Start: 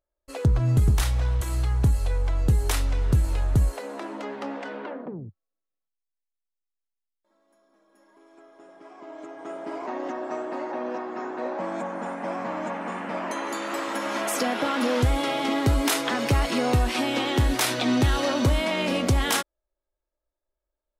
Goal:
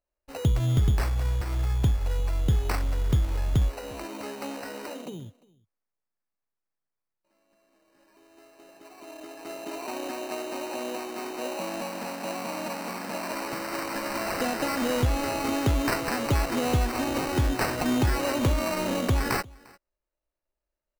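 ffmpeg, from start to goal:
ffmpeg -i in.wav -filter_complex "[0:a]asplit=2[link_01][link_02];[link_02]adelay=349.9,volume=-24dB,highshelf=frequency=4000:gain=-7.87[link_03];[link_01][link_03]amix=inputs=2:normalize=0,acrusher=samples=13:mix=1:aa=0.000001,volume=-2.5dB" out.wav

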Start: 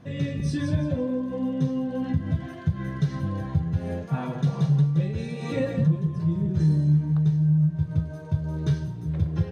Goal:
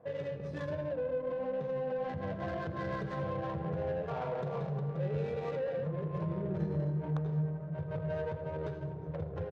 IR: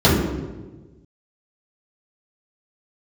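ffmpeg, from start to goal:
-filter_complex "[0:a]highpass=frequency=180:poles=1,lowshelf=frequency=370:width_type=q:width=3:gain=-9.5,dynaudnorm=framelen=300:gausssize=11:maxgain=16dB,alimiter=level_in=4.5dB:limit=-24dB:level=0:latency=1:release=294,volume=-4.5dB,adynamicsmooth=sensitivity=4:basefreq=680,aecho=1:1:82:0.168,asplit=2[link_01][link_02];[1:a]atrim=start_sample=2205,adelay=104[link_03];[link_02][link_03]afir=irnorm=-1:irlink=0,volume=-38.5dB[link_04];[link_01][link_04]amix=inputs=2:normalize=0"

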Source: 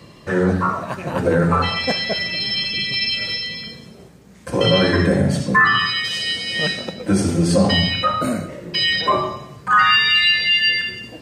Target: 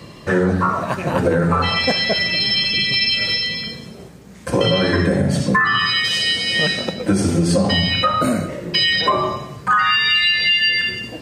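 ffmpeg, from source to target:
ffmpeg -i in.wav -af "acompressor=threshold=-18dB:ratio=6,volume=5dB" out.wav

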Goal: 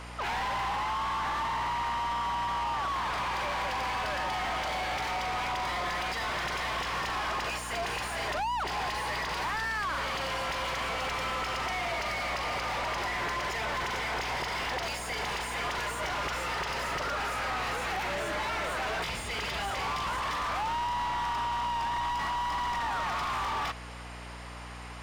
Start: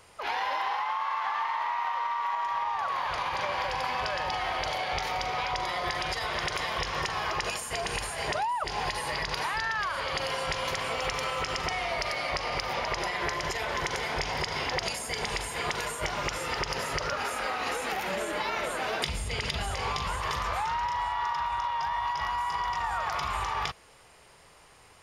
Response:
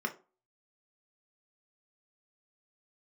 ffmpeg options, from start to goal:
-filter_complex "[0:a]asplit=2[link_01][link_02];[link_02]highpass=frequency=720:poles=1,volume=30dB,asoftclip=type=tanh:threshold=-15.5dB[link_03];[link_01][link_03]amix=inputs=2:normalize=0,lowpass=frequency=2400:poles=1,volume=-6dB,aeval=exprs='val(0)+0.0178*(sin(2*PI*60*n/s)+sin(2*PI*2*60*n/s)/2+sin(2*PI*3*60*n/s)/3+sin(2*PI*4*60*n/s)/4+sin(2*PI*5*60*n/s)/5)':channel_layout=same,equalizer=frequency=490:width=3.9:gain=-2.5,volume=-9dB"

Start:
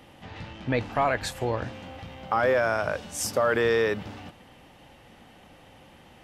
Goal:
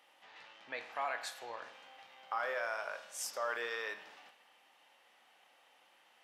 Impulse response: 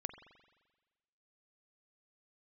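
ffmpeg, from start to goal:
-filter_complex "[0:a]highpass=830[link_01];[1:a]atrim=start_sample=2205,asetrate=74970,aresample=44100[link_02];[link_01][link_02]afir=irnorm=-1:irlink=0,volume=-3dB"

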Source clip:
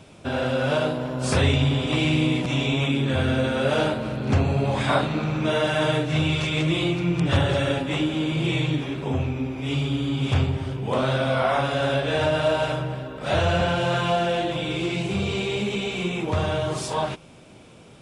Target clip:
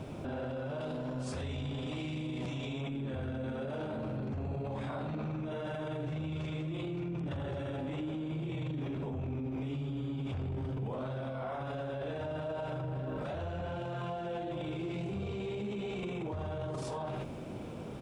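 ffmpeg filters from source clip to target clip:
ffmpeg -i in.wav -filter_complex "[0:a]asettb=1/sr,asplit=3[link_01][link_02][link_03];[link_01]atrim=end=0.814[link_04];[link_02]atrim=start=0.81:end=2.81,asetpts=PTS-STARTPTS,afade=type=in:duration=0.004:curve=qsin,afade=type=out:start_time=1.996:duration=0.004:curve=qsin,equalizer=frequency=6300:width_type=o:width=2.6:gain=9[link_05];[link_03]atrim=start=2.806[link_06];[link_04][link_05]acrossfade=duration=0.004:curve1=hsin:curve2=qsin[link_07];[link_07][link_06]acrossfade=duration=0.004:curve1=qsin:curve2=hsin,acrusher=bits=10:mix=0:aa=0.000001,tiltshelf=frequency=1500:gain=7,bandreject=frequency=60:width_type=h:width=6,bandreject=frequency=120:width_type=h:width=6,bandreject=frequency=180:width_type=h:width=6,aecho=1:1:83:0.282,alimiter=level_in=7dB:limit=-24dB:level=0:latency=1:release=12,volume=-7dB" out.wav

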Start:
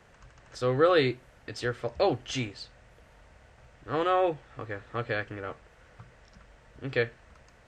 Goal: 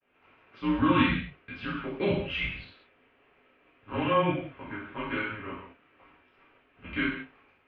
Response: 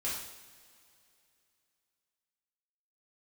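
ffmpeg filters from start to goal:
-filter_complex "[0:a]agate=range=-33dB:threshold=-50dB:ratio=3:detection=peak,highpass=frequency=230:width_type=q:width=0.5412,highpass=frequency=230:width_type=q:width=1.307,lowpass=frequency=3100:width_type=q:width=0.5176,lowpass=frequency=3100:width_type=q:width=0.7071,lowpass=frequency=3100:width_type=q:width=1.932,afreqshift=-200,aexciter=amount=3.5:drive=1:freq=2300,lowshelf=frequency=110:gain=-4.5[link_01];[1:a]atrim=start_sample=2205,afade=type=out:start_time=0.27:duration=0.01,atrim=end_sample=12348[link_02];[link_01][link_02]afir=irnorm=-1:irlink=0,volume=-3dB"

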